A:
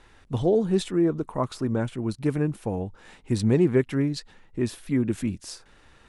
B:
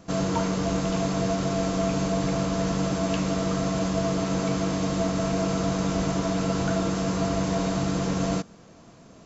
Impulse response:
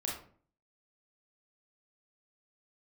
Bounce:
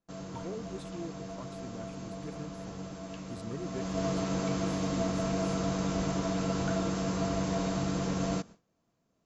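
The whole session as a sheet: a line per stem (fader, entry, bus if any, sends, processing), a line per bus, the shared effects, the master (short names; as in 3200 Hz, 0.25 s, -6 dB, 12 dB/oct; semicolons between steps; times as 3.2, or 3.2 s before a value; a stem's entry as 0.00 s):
-20.0 dB, 0.00 s, no send, dry
3.55 s -16.5 dB -> 4.04 s -5.5 dB, 0.00 s, no send, dry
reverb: off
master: gate with hold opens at -43 dBFS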